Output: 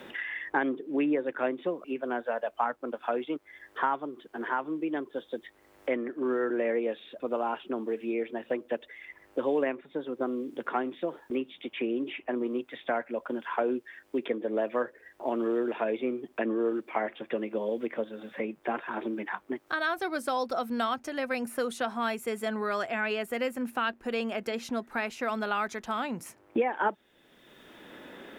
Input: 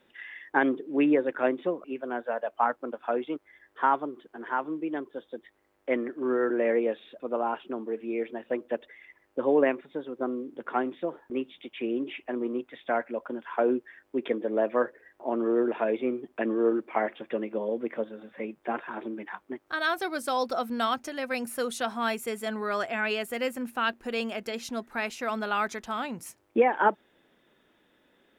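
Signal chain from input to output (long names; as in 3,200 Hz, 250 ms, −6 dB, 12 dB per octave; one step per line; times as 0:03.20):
multiband upward and downward compressor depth 70%
level −2 dB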